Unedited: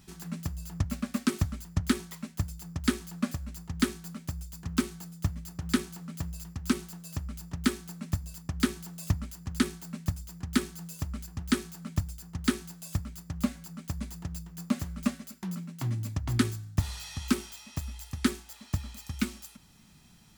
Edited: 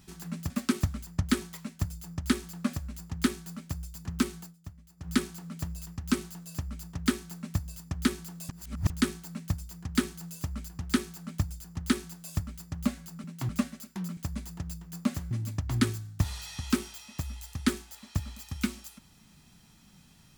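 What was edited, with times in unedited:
0:00.50–0:01.08: remove
0:04.99–0:05.69: duck −15 dB, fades 0.14 s
0:09.07–0:09.48: reverse
0:13.82–0:14.96: swap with 0:15.64–0:15.89

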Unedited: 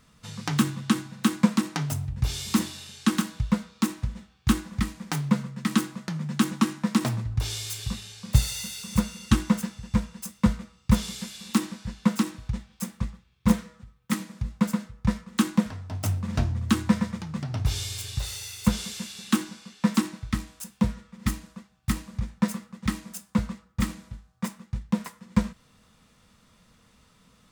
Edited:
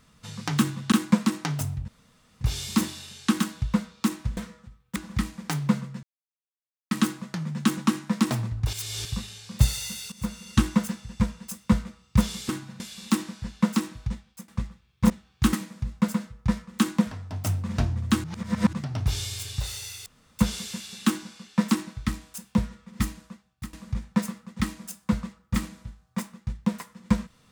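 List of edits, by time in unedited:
0:00.92–0:01.23: move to 0:11.23
0:02.19: splice in room tone 0.53 s
0:04.15–0:04.58: swap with 0:13.53–0:14.12
0:05.65: splice in silence 0.88 s
0:07.47–0:07.79: reverse
0:08.86–0:09.30: fade in, from −13.5 dB
0:12.54–0:12.91: fade out, to −19.5 dB
0:16.83–0:17.32: reverse
0:18.65: splice in room tone 0.33 s
0:21.52–0:21.99: fade out, to −19.5 dB

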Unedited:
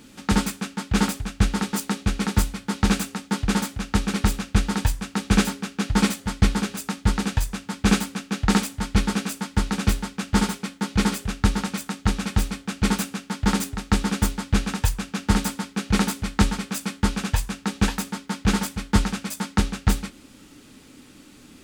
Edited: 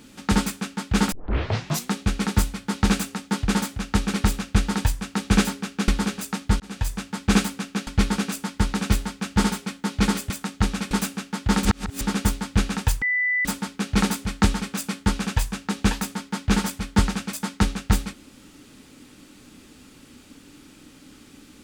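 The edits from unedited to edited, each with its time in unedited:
0:01.12: tape start 0.80 s
0:05.88–0:06.44: remove
0:07.16–0:07.48: fade in
0:08.43–0:08.84: remove
0:11.27–0:11.75: remove
0:12.36–0:12.88: remove
0:13.62–0:13.98: reverse
0:14.99–0:15.42: beep over 1,990 Hz −19.5 dBFS

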